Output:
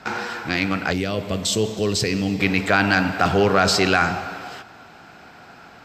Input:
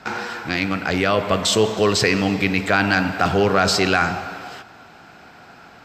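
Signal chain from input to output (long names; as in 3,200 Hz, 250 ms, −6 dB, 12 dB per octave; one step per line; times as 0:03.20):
0:00.93–0:02.40: parametric band 1,200 Hz −13.5 dB 2.3 octaves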